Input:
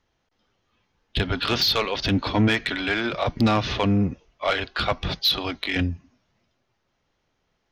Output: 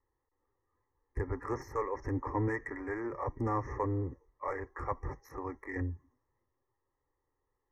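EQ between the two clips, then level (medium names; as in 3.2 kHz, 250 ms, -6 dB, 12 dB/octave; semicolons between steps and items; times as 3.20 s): Chebyshev band-stop 1.9–5.4 kHz, order 4; distance through air 88 m; static phaser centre 990 Hz, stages 8; -6.0 dB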